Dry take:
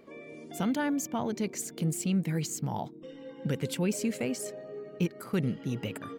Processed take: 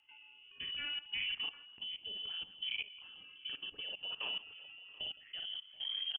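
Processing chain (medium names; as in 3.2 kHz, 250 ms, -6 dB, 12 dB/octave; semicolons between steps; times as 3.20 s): tape stop on the ending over 0.89 s; on a send: multi-tap echo 43/55/164/730/765 ms -7.5/-6.5/-11.5/-14.5/-12.5 dB; on the sum: frequency inversion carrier 3.2 kHz; level held to a coarse grid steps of 16 dB; rotary cabinet horn 0.6 Hz; trim -5 dB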